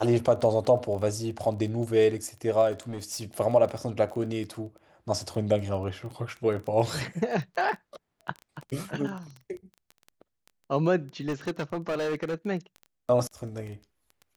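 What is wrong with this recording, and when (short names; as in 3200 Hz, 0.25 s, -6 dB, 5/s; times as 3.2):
crackle 13/s -34 dBFS
2.71–3.23 clipped -30 dBFS
11.27–12.35 clipped -25.5 dBFS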